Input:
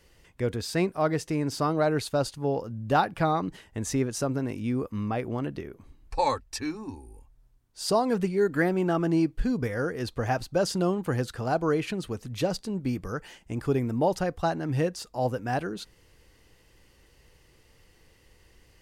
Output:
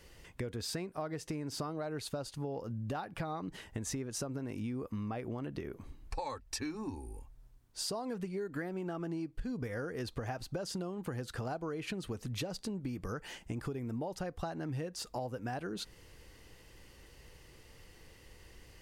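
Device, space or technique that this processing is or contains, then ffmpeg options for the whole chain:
serial compression, peaks first: -af "acompressor=threshold=-32dB:ratio=6,acompressor=threshold=-40dB:ratio=2.5,volume=2.5dB"

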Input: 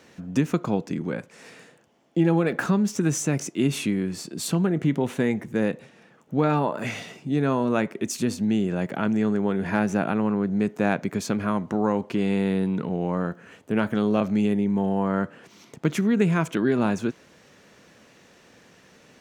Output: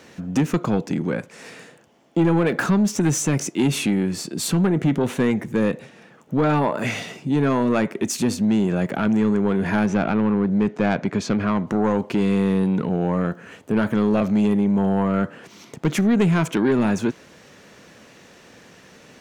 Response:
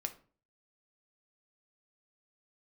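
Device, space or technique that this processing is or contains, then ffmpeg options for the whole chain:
saturation between pre-emphasis and de-emphasis: -filter_complex "[0:a]asettb=1/sr,asplit=3[link_01][link_02][link_03];[link_01]atrim=end=9.864[link_04];[link_02]atrim=start=9.86:end=11.67,asetpts=PTS-STARTPTS,afade=type=in:duration=0.004:curve=qsin,afade=type=out:start_time=1.806:duration=0.004:curve=qsin,lowpass=5100[link_05];[link_03]atrim=start=11.666[link_06];[link_04][link_05]acrossfade=duration=0.004:curve1=hsin:curve2=qsin[link_07];[link_07][link_06]acrossfade=duration=0.004:curve1=qsin:curve2=hsin,highshelf=frequency=6700:gain=10,asoftclip=type=tanh:threshold=-18dB,highshelf=frequency=6700:gain=-10,volume=6dB"

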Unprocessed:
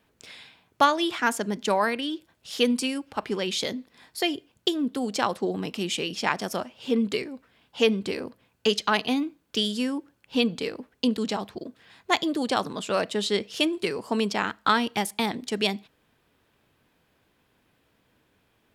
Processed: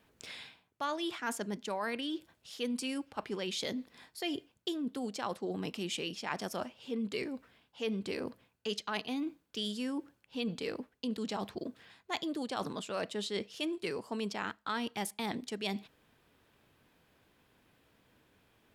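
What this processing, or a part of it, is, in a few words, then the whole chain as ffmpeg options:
compression on the reversed sound: -af "areverse,acompressor=threshold=-34dB:ratio=4,areverse,volume=-1dB"

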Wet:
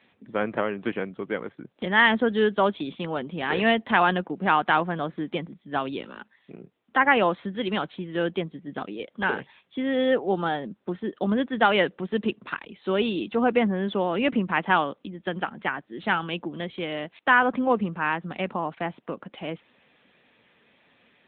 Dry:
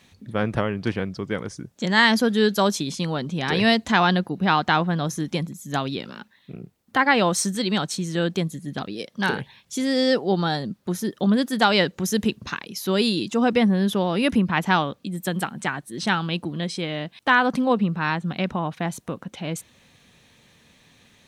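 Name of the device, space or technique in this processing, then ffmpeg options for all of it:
telephone: -af "highpass=270,lowpass=3400" -ar 8000 -c:a libopencore_amrnb -b:a 10200

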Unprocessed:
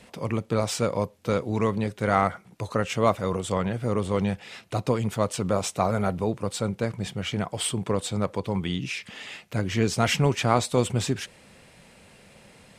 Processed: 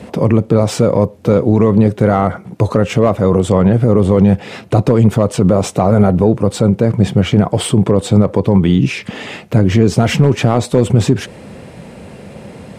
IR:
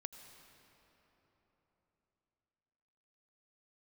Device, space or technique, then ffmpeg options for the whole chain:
mastering chain: -af "highpass=58,equalizer=frequency=360:width_type=o:width=1.7:gain=2,acompressor=threshold=-28dB:ratio=1.5,asoftclip=type=tanh:threshold=-14dB,tiltshelf=frequency=1100:gain=7,asoftclip=type=hard:threshold=-12dB,alimiter=level_in=15.5dB:limit=-1dB:release=50:level=0:latency=1,volume=-1dB"

